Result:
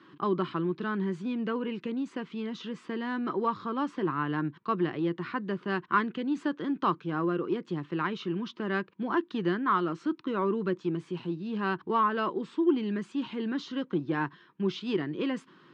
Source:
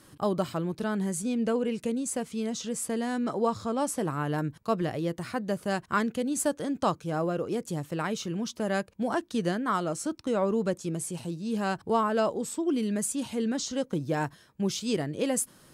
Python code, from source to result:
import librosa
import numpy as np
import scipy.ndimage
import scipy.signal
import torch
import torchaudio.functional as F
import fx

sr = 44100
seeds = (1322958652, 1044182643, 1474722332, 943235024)

p1 = fx.band_shelf(x, sr, hz=620.0, db=-8.0, octaves=1.2)
p2 = 10.0 ** (-29.5 / 20.0) * np.tanh(p1 / 10.0 ** (-29.5 / 20.0))
p3 = p1 + F.gain(torch.from_numpy(p2), -8.0).numpy()
y = fx.cabinet(p3, sr, low_hz=170.0, low_slope=24, high_hz=3300.0, hz=(230.0, 370.0, 620.0, 1000.0, 2300.0), db=(-6, 5, -7, 5, -3))